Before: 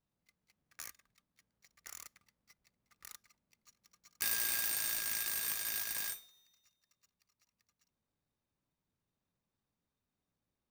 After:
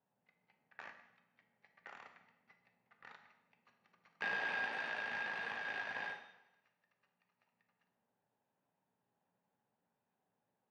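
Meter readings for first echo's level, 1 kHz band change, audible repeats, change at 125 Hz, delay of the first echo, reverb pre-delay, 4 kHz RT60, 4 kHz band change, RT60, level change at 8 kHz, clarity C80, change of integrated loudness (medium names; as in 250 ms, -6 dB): no echo, +8.0 dB, no echo, -2.0 dB, no echo, 4 ms, 0.80 s, -9.0 dB, 0.90 s, under -30 dB, 11.0 dB, -6.0 dB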